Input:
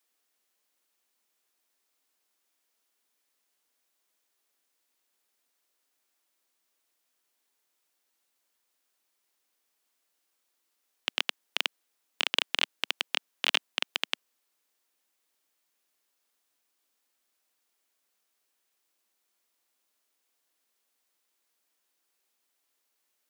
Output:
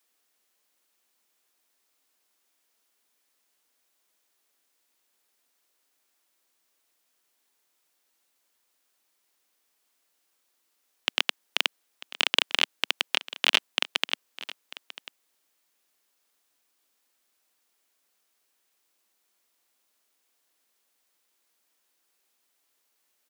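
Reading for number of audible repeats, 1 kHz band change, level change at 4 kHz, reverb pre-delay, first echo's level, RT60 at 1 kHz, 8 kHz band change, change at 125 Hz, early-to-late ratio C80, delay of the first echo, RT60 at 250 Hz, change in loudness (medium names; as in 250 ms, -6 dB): 1, +4.0 dB, +4.0 dB, no reverb, -17.0 dB, no reverb, +4.0 dB, no reading, no reverb, 944 ms, no reverb, +4.0 dB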